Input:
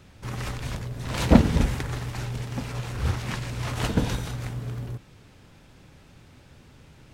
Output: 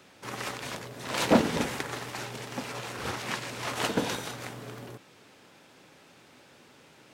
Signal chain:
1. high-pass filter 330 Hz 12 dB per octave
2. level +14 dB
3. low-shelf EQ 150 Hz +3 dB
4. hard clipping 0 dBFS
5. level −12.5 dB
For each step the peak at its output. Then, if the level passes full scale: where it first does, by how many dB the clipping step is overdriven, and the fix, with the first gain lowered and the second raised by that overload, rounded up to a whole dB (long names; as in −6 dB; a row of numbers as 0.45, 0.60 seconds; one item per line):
−7.0, +7.0, +8.0, 0.0, −12.5 dBFS
step 2, 8.0 dB
step 2 +6 dB, step 5 −4.5 dB